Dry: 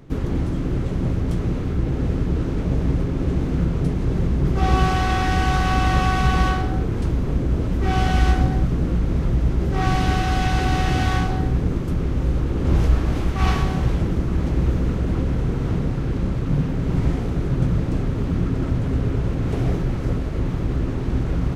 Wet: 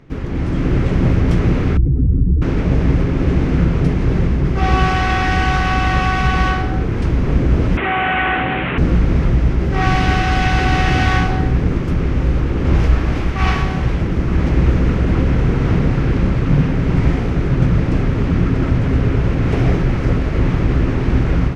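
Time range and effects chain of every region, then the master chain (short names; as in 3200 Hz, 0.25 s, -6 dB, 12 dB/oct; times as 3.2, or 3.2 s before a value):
1.77–2.42 spectral contrast raised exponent 2 + bell 610 Hz -11.5 dB 0.29 oct
7.77–8.78 delta modulation 16 kbps, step -29 dBFS + HPF 730 Hz 6 dB/oct + fast leveller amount 70%
whole clip: bell 5100 Hz +14.5 dB 1.3 oct; AGC; resonant high shelf 3200 Hz -11.5 dB, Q 1.5; gain -1 dB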